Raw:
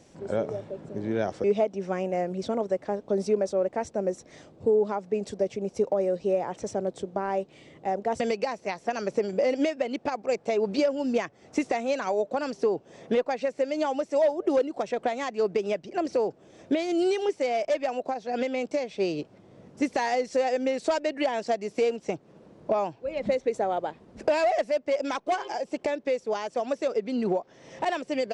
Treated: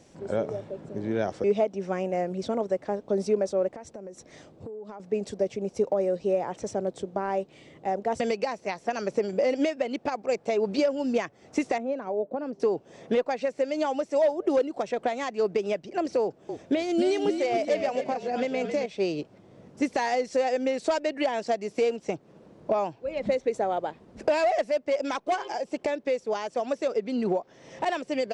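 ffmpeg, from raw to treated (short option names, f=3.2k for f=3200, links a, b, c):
-filter_complex "[0:a]asettb=1/sr,asplit=3[a][b][c];[a]atrim=end=3.694[d];[b]atrim=start=3.69:end=5,asetpts=PTS-STARTPTS,afade=t=in:d=0.004:c=qsin,afade=t=out:st=1.306:d=0.004:c=qsin,acompressor=threshold=-36dB:ratio=16:attack=3.2:release=140:knee=1:detection=peak[e];[c]atrim=start=4.996[f];[d][e]acrossfade=d=0.004:c1=hsin:c2=qsin[g];[g][f]acrossfade=d=0.004:c1=qsin:c2=hsin,asettb=1/sr,asplit=3[h][i][j];[h]atrim=end=11.784[k];[i]atrim=start=11.78:end=12.6,asetpts=PTS-STARTPTS,afade=t=in:d=0.004:c=qsin,afade=t=out:st=0.816:d=0.004:c=qsin,bandpass=f=280:t=q:w=0.67[l];[j]atrim=start=12.596[m];[k][l]acrossfade=d=0.004:c1=hsin:c2=qsin[n];[n][m]acrossfade=d=0.004:c1=qsin:c2=hsin,asettb=1/sr,asplit=3[o][p][q];[o]atrim=end=16.224[r];[p]atrim=start=16.22:end=18.86,asetpts=PTS-STARTPTS,afade=t=in:d=0.004:c=qsin,afade=t=out:st=2.636:d=0.004:c=qsin,asplit=5[s][t][u][v][w];[t]adelay=269,afreqshift=-47,volume=-7dB[x];[u]adelay=538,afreqshift=-94,volume=-15.6dB[y];[v]adelay=807,afreqshift=-141,volume=-24.3dB[z];[w]adelay=1076,afreqshift=-188,volume=-32.9dB[aa];[s][x][y][z][aa]amix=inputs=5:normalize=0,atrim=end_sample=116424[ab];[q]atrim=start=18.856[ac];[r][ab]acrossfade=d=0.004:c1=hsin:c2=qsin[ad];[ad][ac]acrossfade=d=0.004:c1=qsin:c2=hsin"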